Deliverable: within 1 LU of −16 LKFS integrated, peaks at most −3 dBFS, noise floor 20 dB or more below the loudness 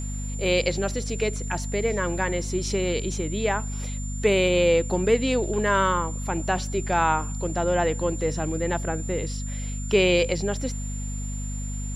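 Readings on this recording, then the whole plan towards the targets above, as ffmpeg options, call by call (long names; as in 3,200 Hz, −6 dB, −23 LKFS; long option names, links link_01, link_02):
mains hum 50 Hz; hum harmonics up to 250 Hz; level of the hum −28 dBFS; interfering tone 7,200 Hz; level of the tone −38 dBFS; integrated loudness −25.0 LKFS; sample peak −8.5 dBFS; target loudness −16.0 LKFS
→ -af "bandreject=frequency=50:width_type=h:width=6,bandreject=frequency=100:width_type=h:width=6,bandreject=frequency=150:width_type=h:width=6,bandreject=frequency=200:width_type=h:width=6,bandreject=frequency=250:width_type=h:width=6"
-af "bandreject=frequency=7200:width=30"
-af "volume=9dB,alimiter=limit=-3dB:level=0:latency=1"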